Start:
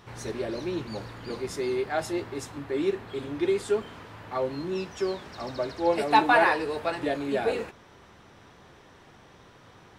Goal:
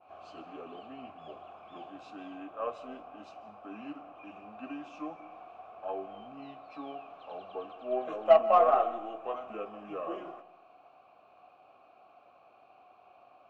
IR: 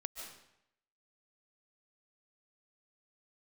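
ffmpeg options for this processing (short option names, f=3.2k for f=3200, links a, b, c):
-filter_complex "[0:a]adynamicequalizer=threshold=0.002:dfrequency=6800:dqfactor=0.8:tfrequency=6800:tqfactor=0.8:attack=5:release=100:ratio=0.375:range=3.5:mode=cutabove:tftype=bell,asetrate=32634,aresample=44100,asplit=3[a][b][c];[a]bandpass=f=730:t=q:w=8,volume=0dB[d];[b]bandpass=f=1.09k:t=q:w=8,volume=-6dB[e];[c]bandpass=f=2.44k:t=q:w=8,volume=-9dB[f];[d][e][f]amix=inputs=3:normalize=0,aeval=exprs='0.178*(cos(1*acos(clip(val(0)/0.178,-1,1)))-cos(1*PI/2))+0.0126*(cos(3*acos(clip(val(0)/0.178,-1,1)))-cos(3*PI/2))+0.001*(cos(8*acos(clip(val(0)/0.178,-1,1)))-cos(8*PI/2))':c=same,asplit=2[g][h];[1:a]atrim=start_sample=2205[i];[h][i]afir=irnorm=-1:irlink=0,volume=-8dB[j];[g][j]amix=inputs=2:normalize=0,volume=4.5dB"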